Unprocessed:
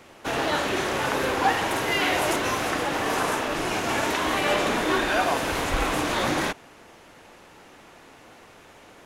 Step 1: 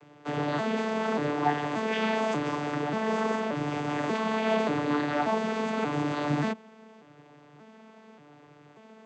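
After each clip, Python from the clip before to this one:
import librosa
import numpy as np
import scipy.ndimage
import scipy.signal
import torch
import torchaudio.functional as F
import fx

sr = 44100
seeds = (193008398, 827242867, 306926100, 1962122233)

y = fx.vocoder_arp(x, sr, chord='bare fifth', root=50, every_ms=584)
y = F.gain(torch.from_numpy(y), -2.5).numpy()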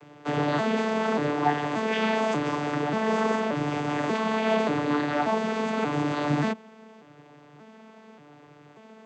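y = fx.rider(x, sr, range_db=3, speed_s=2.0)
y = F.gain(torch.from_numpy(y), 2.5).numpy()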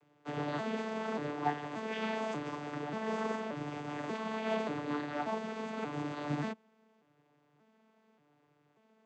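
y = fx.upward_expand(x, sr, threshold_db=-41.0, expansion=1.5)
y = F.gain(torch.from_numpy(y), -8.0).numpy()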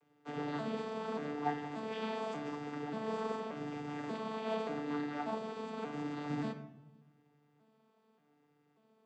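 y = fx.room_shoebox(x, sr, seeds[0], volume_m3=3400.0, walls='furnished', distance_m=1.7)
y = F.gain(torch.from_numpy(y), -4.5).numpy()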